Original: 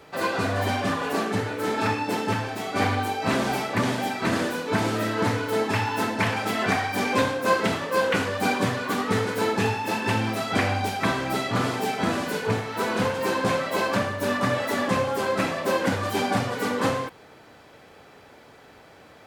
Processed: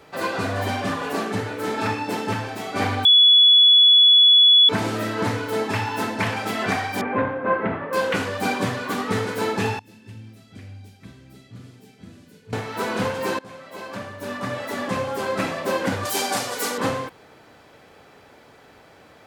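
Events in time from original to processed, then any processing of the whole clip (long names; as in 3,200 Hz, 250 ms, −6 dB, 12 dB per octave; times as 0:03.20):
0:03.05–0:04.69: beep over 3,400 Hz −9.5 dBFS
0:07.01–0:07.93: low-pass filter 2,000 Hz 24 dB per octave
0:09.79–0:12.53: guitar amp tone stack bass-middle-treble 10-0-1
0:13.39–0:15.40: fade in, from −22 dB
0:16.05–0:16.78: bass and treble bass −13 dB, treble +13 dB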